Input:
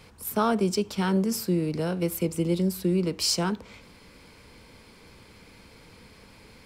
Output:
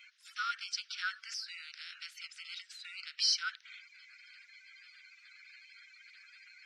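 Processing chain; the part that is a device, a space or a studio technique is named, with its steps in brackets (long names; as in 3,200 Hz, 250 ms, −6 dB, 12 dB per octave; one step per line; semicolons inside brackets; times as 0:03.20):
clip after many re-uploads (low-pass filter 5,300 Hz 24 dB per octave; spectral magnitudes quantised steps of 30 dB)
Butterworth high-pass 1,400 Hz 72 dB per octave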